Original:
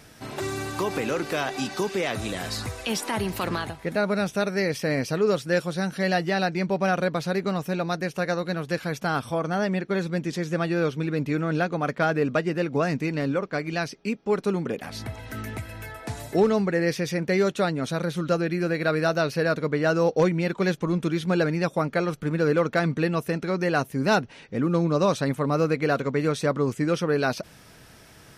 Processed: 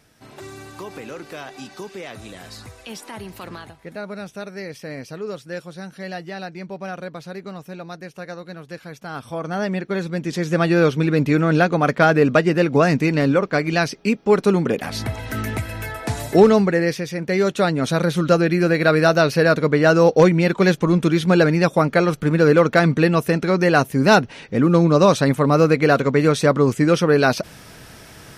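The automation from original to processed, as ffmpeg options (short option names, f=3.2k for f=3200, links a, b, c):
-af "volume=17.5dB,afade=t=in:st=9.07:d=0.58:silence=0.334965,afade=t=in:st=10.18:d=0.53:silence=0.473151,afade=t=out:st=16.49:d=0.6:silence=0.334965,afade=t=in:st=17.09:d=0.87:silence=0.354813"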